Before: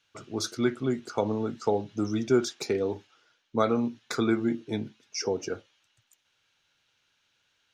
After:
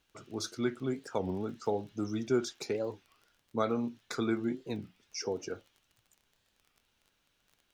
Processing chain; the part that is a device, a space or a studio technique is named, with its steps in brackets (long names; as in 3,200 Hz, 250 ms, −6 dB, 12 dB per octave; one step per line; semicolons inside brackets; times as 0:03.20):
warped LP (wow of a warped record 33 1/3 rpm, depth 250 cents; surface crackle 23 per second −41 dBFS; pink noise bed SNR 42 dB)
level −6 dB